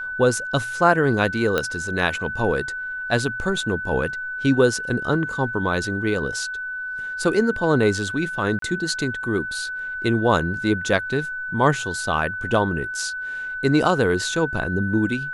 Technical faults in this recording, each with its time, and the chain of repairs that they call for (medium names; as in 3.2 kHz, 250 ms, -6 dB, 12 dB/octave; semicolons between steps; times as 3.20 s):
whine 1.5 kHz -27 dBFS
1.58 s: pop -8 dBFS
8.59–8.62 s: dropout 33 ms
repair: de-click; band-stop 1.5 kHz, Q 30; interpolate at 8.59 s, 33 ms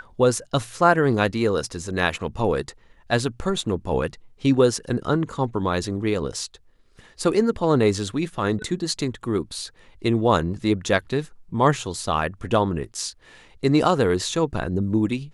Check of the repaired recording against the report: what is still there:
nothing left